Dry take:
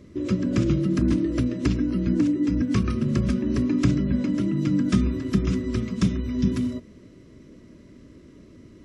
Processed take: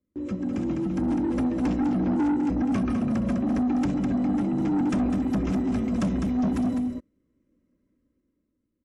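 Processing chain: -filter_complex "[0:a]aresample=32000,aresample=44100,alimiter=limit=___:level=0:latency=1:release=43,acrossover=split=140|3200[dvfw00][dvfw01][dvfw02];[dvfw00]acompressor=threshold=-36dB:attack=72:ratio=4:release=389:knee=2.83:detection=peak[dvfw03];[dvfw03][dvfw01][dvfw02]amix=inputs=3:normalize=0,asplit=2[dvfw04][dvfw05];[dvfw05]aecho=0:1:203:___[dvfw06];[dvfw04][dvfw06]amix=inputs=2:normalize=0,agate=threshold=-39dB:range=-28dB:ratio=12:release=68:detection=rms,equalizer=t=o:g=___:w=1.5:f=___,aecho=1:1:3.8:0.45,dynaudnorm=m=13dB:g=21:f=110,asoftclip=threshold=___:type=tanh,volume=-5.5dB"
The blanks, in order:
-11dB, 0.447, -10.5, 4.4k, -15dB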